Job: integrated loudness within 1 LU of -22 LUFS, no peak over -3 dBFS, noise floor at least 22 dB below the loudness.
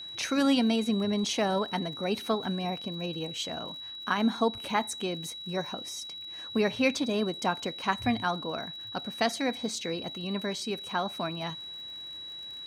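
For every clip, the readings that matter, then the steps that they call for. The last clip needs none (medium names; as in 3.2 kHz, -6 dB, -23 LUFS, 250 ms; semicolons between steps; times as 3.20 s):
tick rate 56 per s; steady tone 3.9 kHz; tone level -39 dBFS; loudness -30.5 LUFS; peak level -10.5 dBFS; loudness target -22.0 LUFS
-> de-click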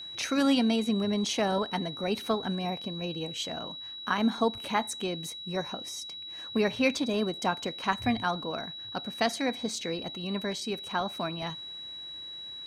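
tick rate 0.079 per s; steady tone 3.9 kHz; tone level -39 dBFS
-> band-stop 3.9 kHz, Q 30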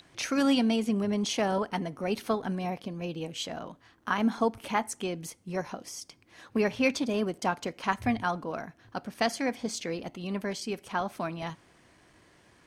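steady tone not found; loudness -31.0 LUFS; peak level -10.5 dBFS; loudness target -22.0 LUFS
-> trim +9 dB; peak limiter -3 dBFS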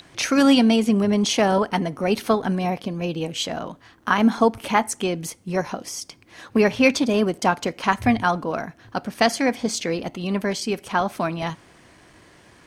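loudness -22.0 LUFS; peak level -3.0 dBFS; noise floor -52 dBFS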